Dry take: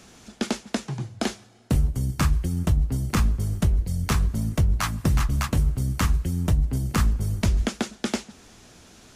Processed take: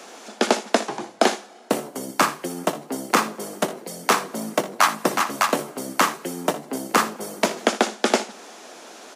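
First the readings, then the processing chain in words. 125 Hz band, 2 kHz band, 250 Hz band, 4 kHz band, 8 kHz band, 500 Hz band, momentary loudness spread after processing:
-18.5 dB, +9.5 dB, +0.5 dB, +7.5 dB, +7.0 dB, +12.0 dB, 11 LU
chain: Bessel high-pass 380 Hz, order 8; bell 660 Hz +8.5 dB 2.2 oct; early reflections 60 ms -15 dB, 79 ms -18 dB; gain +6.5 dB

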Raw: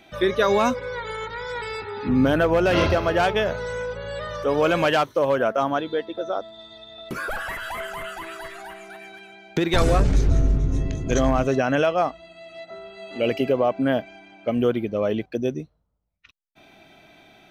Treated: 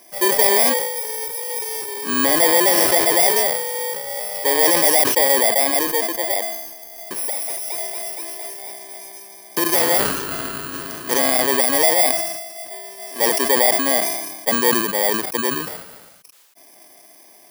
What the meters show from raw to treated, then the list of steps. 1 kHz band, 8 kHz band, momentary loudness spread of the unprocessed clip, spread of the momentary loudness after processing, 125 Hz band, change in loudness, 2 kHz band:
+3.0 dB, +22.0 dB, 19 LU, 17 LU, -14.0 dB, +6.5 dB, +5.0 dB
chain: FFT order left unsorted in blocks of 32 samples; HPF 430 Hz 12 dB/oct; sustainer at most 45 dB/s; gain +5 dB

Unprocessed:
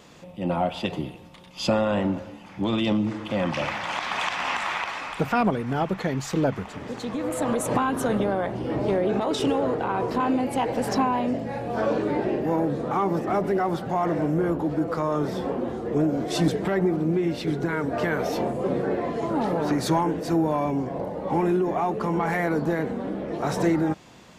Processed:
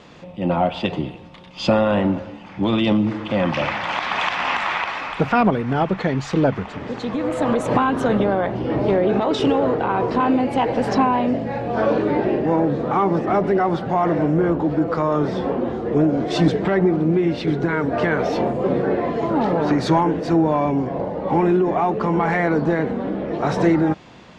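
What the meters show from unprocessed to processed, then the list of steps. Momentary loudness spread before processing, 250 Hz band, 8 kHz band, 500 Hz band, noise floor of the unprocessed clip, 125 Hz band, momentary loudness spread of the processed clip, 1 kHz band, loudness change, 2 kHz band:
6 LU, +5.5 dB, n/a, +5.5 dB, -45 dBFS, +5.5 dB, 6 LU, +5.5 dB, +5.5 dB, +5.5 dB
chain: LPF 4300 Hz 12 dB/oct; gain +5.5 dB

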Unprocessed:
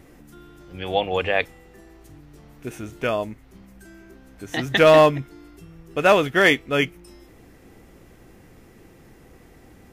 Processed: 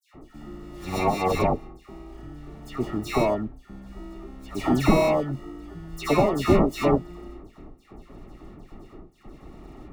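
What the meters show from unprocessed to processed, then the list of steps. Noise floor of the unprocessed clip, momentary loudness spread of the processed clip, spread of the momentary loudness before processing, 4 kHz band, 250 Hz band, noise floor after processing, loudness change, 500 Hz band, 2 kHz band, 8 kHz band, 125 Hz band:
-50 dBFS, 22 LU, 21 LU, -9.5 dB, +3.0 dB, -56 dBFS, -4.5 dB, -5.0 dB, -12.0 dB, -1.0 dB, +2.5 dB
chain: gate with hold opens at -39 dBFS; sample-rate reducer 1600 Hz, jitter 0%; bell 91 Hz -14 dB 2.6 oct; compressor 16:1, threshold -22 dBFS, peak gain reduction 13.5 dB; tilt -3.5 dB/oct; notch comb 500 Hz; dispersion lows, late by 0.14 s, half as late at 1900 Hz; gain +5.5 dB

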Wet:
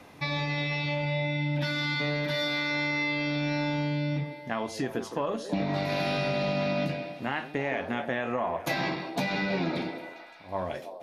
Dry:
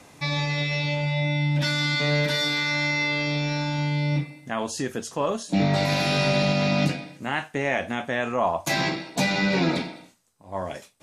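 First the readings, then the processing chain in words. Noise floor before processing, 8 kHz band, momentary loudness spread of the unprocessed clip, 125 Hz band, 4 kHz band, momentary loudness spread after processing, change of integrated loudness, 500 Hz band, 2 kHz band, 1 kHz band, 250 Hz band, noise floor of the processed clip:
-53 dBFS, -12.5 dB, 8 LU, -6.5 dB, -7.0 dB, 6 LU, -5.5 dB, -3.5 dB, -5.0 dB, -4.5 dB, -4.5 dB, -45 dBFS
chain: bell 7700 Hz -14 dB 0.93 oct; notches 50/100/150/200 Hz; compressor, threshold -26 dBFS, peak gain reduction 8 dB; on a send: delay with a stepping band-pass 0.164 s, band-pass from 380 Hz, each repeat 0.7 oct, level -6 dB

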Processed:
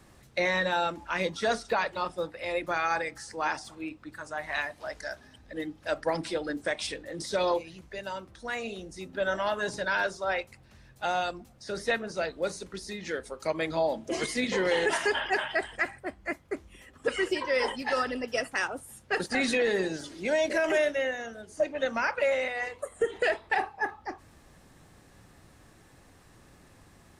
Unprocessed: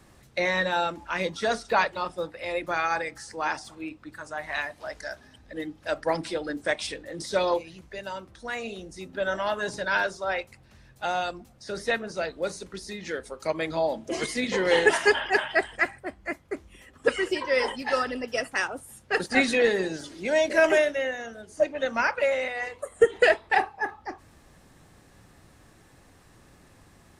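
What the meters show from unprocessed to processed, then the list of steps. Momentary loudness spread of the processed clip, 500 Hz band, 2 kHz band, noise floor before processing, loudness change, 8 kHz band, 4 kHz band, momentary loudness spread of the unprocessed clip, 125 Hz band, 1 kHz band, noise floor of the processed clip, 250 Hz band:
12 LU, -3.5 dB, -3.5 dB, -56 dBFS, -3.5 dB, -1.5 dB, -2.0 dB, 16 LU, -1.5 dB, -2.5 dB, -57 dBFS, -2.0 dB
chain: limiter -16 dBFS, peak gain reduction 9.5 dB; gain -1 dB

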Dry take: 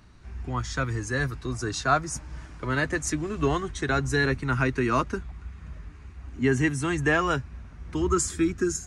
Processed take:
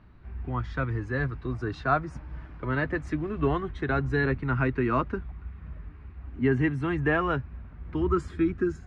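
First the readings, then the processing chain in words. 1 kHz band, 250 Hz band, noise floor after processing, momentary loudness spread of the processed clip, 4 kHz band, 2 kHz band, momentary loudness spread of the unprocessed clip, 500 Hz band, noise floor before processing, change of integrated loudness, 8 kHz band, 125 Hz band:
-2.0 dB, -0.5 dB, -47 dBFS, 17 LU, -11.0 dB, -3.5 dB, 19 LU, -1.0 dB, -46 dBFS, -1.5 dB, under -25 dB, 0.0 dB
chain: air absorption 420 m

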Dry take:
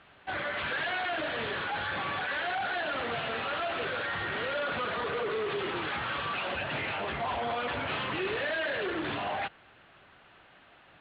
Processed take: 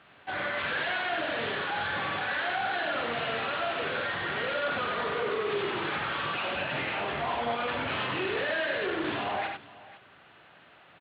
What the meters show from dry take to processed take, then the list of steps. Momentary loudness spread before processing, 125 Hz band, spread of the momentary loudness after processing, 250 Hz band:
2 LU, +0.5 dB, 2 LU, +2.0 dB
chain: HPF 85 Hz; on a send: tapped delay 47/93/500 ms -7.5/-5/-18 dB

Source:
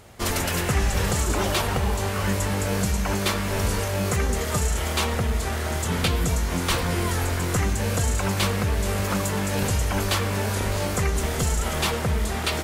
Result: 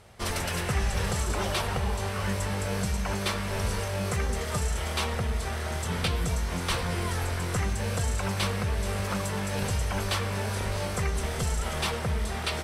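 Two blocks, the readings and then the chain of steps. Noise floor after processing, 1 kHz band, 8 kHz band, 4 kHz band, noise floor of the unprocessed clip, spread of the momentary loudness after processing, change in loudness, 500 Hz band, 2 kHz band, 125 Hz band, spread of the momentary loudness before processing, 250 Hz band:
-32 dBFS, -4.5 dB, -6.5 dB, -4.5 dB, -27 dBFS, 2 LU, -5.0 dB, -5.5 dB, -4.5 dB, -4.5 dB, 2 LU, -6.5 dB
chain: LPF 11000 Hz 12 dB/oct; bell 290 Hz -7 dB 0.49 oct; notch 6900 Hz, Q 9; gain -4.5 dB

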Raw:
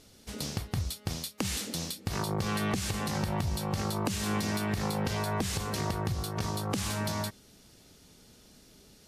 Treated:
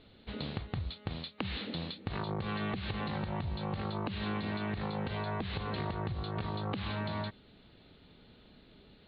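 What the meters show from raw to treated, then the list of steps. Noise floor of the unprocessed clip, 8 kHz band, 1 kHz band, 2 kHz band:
-58 dBFS, under -40 dB, -4.0 dB, -3.5 dB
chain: steep low-pass 4200 Hz 96 dB/oct; compressor, threshold -32 dBFS, peak gain reduction 7 dB

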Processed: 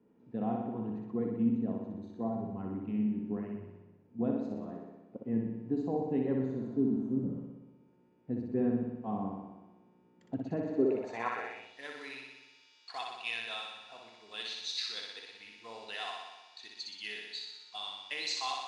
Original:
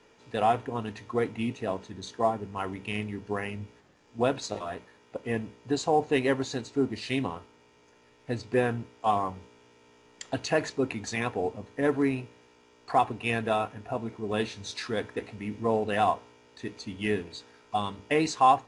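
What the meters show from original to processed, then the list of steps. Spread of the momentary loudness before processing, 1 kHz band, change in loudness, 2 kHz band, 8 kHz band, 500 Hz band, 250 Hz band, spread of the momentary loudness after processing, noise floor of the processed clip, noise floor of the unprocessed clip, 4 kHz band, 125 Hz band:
13 LU, -14.5 dB, -6.0 dB, -8.5 dB, n/a, -9.0 dB, -1.0 dB, 17 LU, -65 dBFS, -60 dBFS, -0.5 dB, -5.5 dB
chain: spectral repair 6.48–7.35, 600–5900 Hz both; flutter echo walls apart 10.5 m, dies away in 1.1 s; band-pass sweep 210 Hz -> 4100 Hz, 10.65–11.8; gain +2 dB

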